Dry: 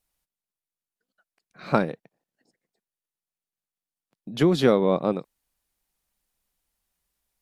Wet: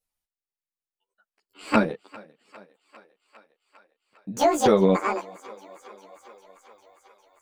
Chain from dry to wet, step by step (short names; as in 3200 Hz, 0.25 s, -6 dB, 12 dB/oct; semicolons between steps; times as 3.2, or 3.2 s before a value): trilling pitch shifter +11.5 st, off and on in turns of 0.291 s; spectral noise reduction 9 dB; thinning echo 0.402 s, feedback 75%, high-pass 290 Hz, level -21 dB; ensemble effect; gain +4 dB